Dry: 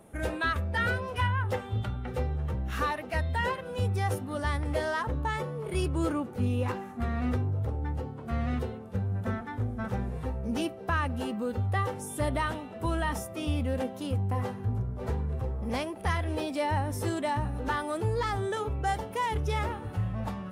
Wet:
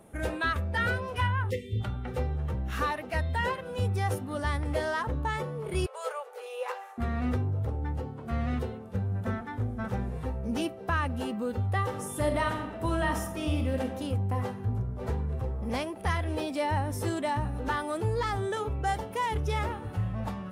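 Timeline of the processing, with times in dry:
0:01.50–0:01.80: time-frequency box erased 550–1,800 Hz
0:05.86–0:06.98: linear-phase brick-wall high-pass 410 Hz
0:11.82–0:13.84: thrown reverb, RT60 1 s, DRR 4.5 dB

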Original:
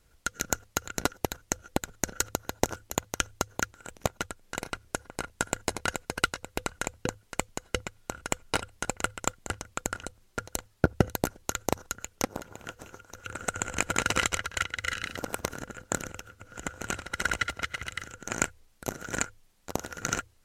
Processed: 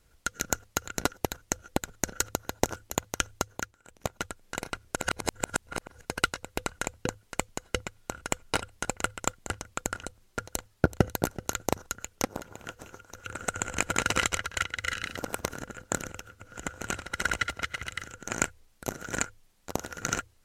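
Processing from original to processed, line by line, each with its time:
0:03.38–0:04.26: duck −12.5 dB, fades 0.42 s
0:04.96–0:06.01: reverse
0:10.52–0:11.21: delay throw 380 ms, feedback 15%, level −16 dB

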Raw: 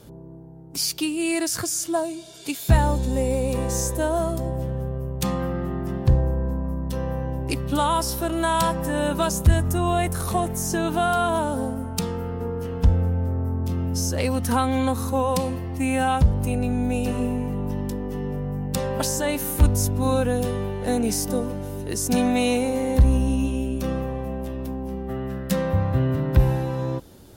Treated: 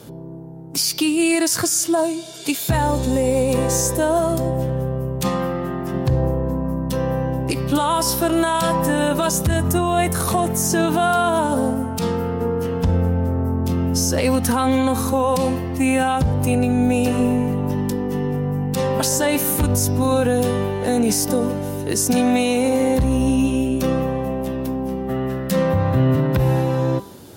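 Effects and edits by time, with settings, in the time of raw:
0:05.29–0:05.94: low-shelf EQ 390 Hz −6.5 dB
0:17.74–0:19.12: notch filter 580 Hz
whole clip: high-pass filter 110 Hz 12 dB per octave; hum removal 197.5 Hz, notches 30; brickwall limiter −17.5 dBFS; level +8 dB

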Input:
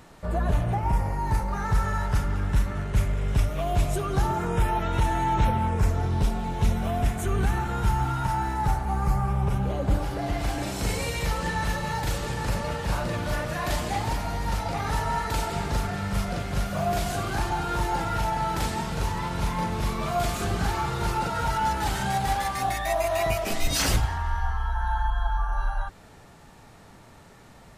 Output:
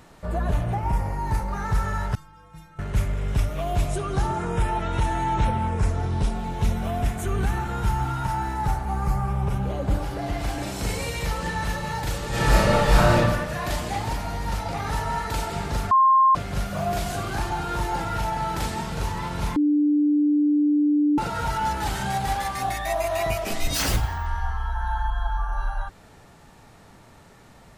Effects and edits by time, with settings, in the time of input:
0:02.15–0:02.79: stiff-string resonator 160 Hz, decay 0.67 s, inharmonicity 0.008
0:03.88–0:06.35: bad sample-rate conversion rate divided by 2×, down none, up filtered
0:12.29–0:13.17: thrown reverb, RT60 1 s, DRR −10.5 dB
0:15.91–0:16.35: beep over 1,060 Hz −13 dBFS
0:19.56–0:21.18: beep over 295 Hz −16.5 dBFS
0:23.74–0:24.26: bad sample-rate conversion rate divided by 2×, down none, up hold

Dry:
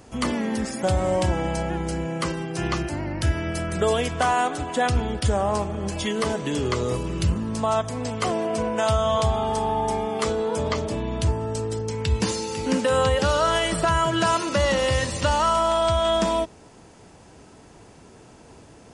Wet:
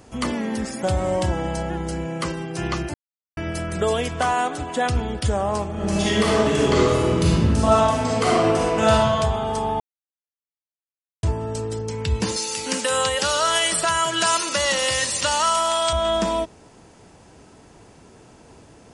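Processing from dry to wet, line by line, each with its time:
0:01.19–0:01.93: notch filter 2,400 Hz, Q 10
0:02.94–0:03.37: silence
0:05.72–0:08.91: thrown reverb, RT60 1.8 s, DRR −6.5 dB
0:09.80–0:11.23: silence
0:12.36–0:15.93: spectral tilt +3.5 dB per octave

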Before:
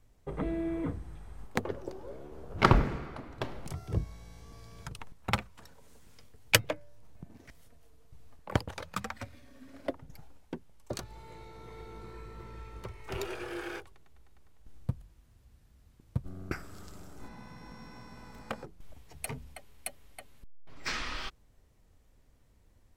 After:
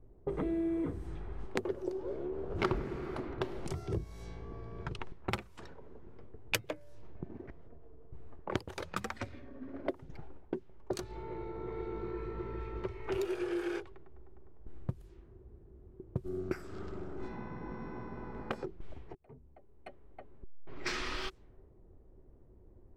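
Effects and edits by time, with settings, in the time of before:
0:14.96–0:16.42: parametric band 390 Hz +8.5 dB 0.42 octaves
0:19.15–0:20.90: fade in
whole clip: low-pass that shuts in the quiet parts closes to 630 Hz, open at −34 dBFS; parametric band 370 Hz +13 dB 0.36 octaves; downward compressor 3 to 1, threshold −40 dBFS; level +5 dB

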